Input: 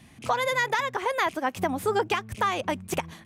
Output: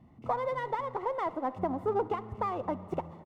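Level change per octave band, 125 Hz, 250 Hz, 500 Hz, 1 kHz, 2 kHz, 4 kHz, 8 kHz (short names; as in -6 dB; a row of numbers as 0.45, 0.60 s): -4.0 dB, -4.0 dB, -4.0 dB, -5.5 dB, -17.5 dB, under -20 dB, under -25 dB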